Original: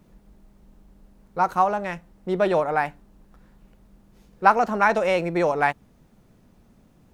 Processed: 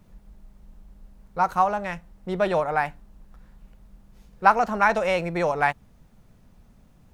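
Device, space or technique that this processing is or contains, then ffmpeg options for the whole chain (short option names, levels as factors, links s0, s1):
low shelf boost with a cut just above: -af "lowshelf=f=69:g=7.5,equalizer=f=330:t=o:w=1.1:g=-6"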